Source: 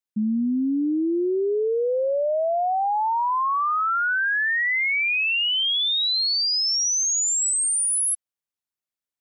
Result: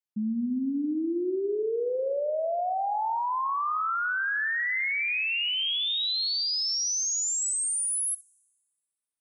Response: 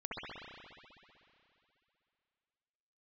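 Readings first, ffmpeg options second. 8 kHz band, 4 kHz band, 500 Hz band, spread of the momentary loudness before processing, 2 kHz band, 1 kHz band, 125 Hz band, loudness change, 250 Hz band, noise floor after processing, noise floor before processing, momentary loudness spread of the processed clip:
-6.0 dB, -5.5 dB, -5.5 dB, 4 LU, -5.5 dB, -5.5 dB, no reading, -5.5 dB, -5.5 dB, -85 dBFS, under -85 dBFS, 4 LU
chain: -filter_complex "[0:a]asplit=2[s0][s1];[1:a]atrim=start_sample=2205,asetrate=79380,aresample=44100,adelay=64[s2];[s1][s2]afir=irnorm=-1:irlink=0,volume=0.355[s3];[s0][s3]amix=inputs=2:normalize=0,volume=0.501"

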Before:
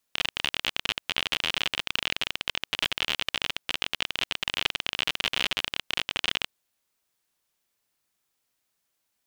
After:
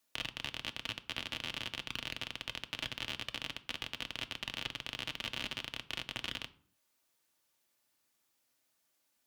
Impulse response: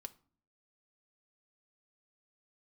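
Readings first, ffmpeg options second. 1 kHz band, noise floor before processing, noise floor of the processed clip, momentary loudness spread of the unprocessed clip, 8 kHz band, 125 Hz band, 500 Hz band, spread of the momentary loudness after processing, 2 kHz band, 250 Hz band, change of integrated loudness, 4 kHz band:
-11.0 dB, -78 dBFS, -78 dBFS, 3 LU, -11.0 dB, -3.5 dB, -10.0 dB, 2 LU, -11.5 dB, -5.5 dB, -11.5 dB, -11.5 dB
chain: -filter_complex "[1:a]atrim=start_sample=2205,afade=t=out:st=0.39:d=0.01,atrim=end_sample=17640,asetrate=48510,aresample=44100[s0];[0:a][s0]afir=irnorm=-1:irlink=0,acrossover=split=200[s1][s2];[s2]acompressor=threshold=0.00282:ratio=2[s3];[s1][s3]amix=inputs=2:normalize=0,highpass=54,volume=2.11"

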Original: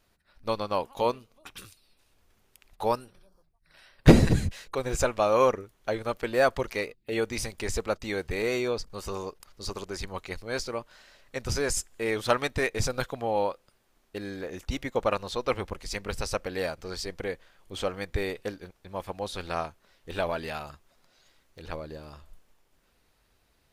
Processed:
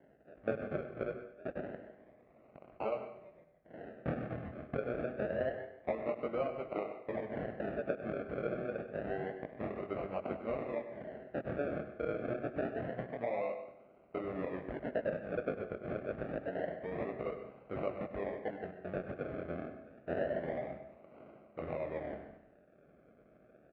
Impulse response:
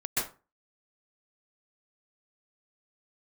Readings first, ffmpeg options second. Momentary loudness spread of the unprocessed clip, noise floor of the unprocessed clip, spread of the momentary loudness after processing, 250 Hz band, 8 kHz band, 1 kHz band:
15 LU, -68 dBFS, 10 LU, -10.0 dB, under -40 dB, -12.0 dB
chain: -filter_complex "[0:a]tiltshelf=f=1100:g=-3.5,acompressor=threshold=0.00891:ratio=8,flanger=delay=17.5:depth=7.4:speed=0.12,acrusher=samples=36:mix=1:aa=0.000001:lfo=1:lforange=21.6:lforate=0.27,highpass=100,equalizer=f=100:t=q:w=4:g=-8,equalizer=f=620:t=q:w=4:g=9,equalizer=f=930:t=q:w=4:g=-10,lowpass=f=2100:w=0.5412,lowpass=f=2100:w=1.3066,aecho=1:1:99|198|297|396|495:0.224|0.103|0.0474|0.0218|0.01,asplit=2[s0][s1];[1:a]atrim=start_sample=2205[s2];[s1][s2]afir=irnorm=-1:irlink=0,volume=0.133[s3];[s0][s3]amix=inputs=2:normalize=0,volume=2.51"

